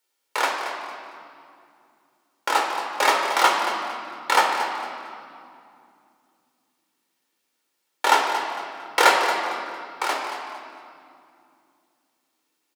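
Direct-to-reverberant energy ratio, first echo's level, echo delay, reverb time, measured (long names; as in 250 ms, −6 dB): 0.0 dB, −11.0 dB, 227 ms, 2.5 s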